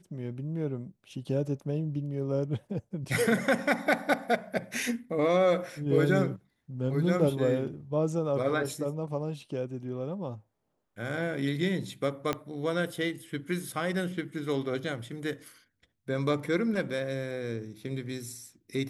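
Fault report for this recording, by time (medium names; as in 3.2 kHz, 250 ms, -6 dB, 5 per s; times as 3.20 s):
12.33 s: pop -15 dBFS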